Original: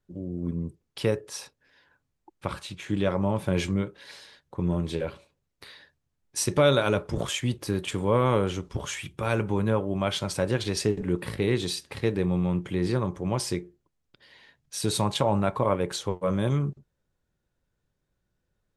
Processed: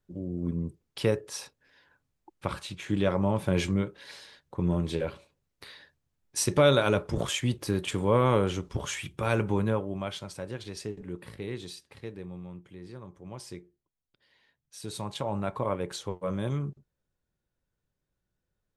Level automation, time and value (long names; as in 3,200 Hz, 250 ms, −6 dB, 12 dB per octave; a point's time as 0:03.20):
0:09.55 −0.5 dB
0:10.34 −11.5 dB
0:11.60 −11.5 dB
0:12.86 −19 dB
0:13.59 −12.5 dB
0:14.81 −12.5 dB
0:15.54 −5.5 dB